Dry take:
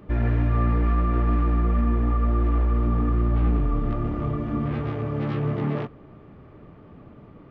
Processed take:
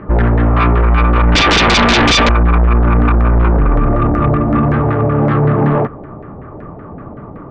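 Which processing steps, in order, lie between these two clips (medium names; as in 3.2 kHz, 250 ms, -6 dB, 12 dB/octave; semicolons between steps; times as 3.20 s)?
1.35–2.29 s: overdrive pedal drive 39 dB, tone 2.3 kHz, clips at -12 dBFS; LFO low-pass saw down 5.3 Hz 670–1800 Hz; sine folder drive 11 dB, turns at -7 dBFS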